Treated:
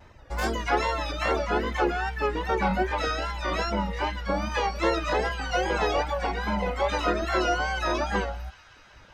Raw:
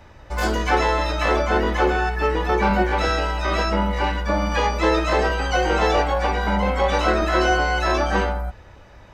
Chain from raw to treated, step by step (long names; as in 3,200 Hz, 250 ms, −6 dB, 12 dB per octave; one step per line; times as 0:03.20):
pitch vibrato 2.5 Hz 80 cents
reverb reduction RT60 1 s
delay with a high-pass on its return 189 ms, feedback 82%, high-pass 1,700 Hz, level −20.5 dB
level −4.5 dB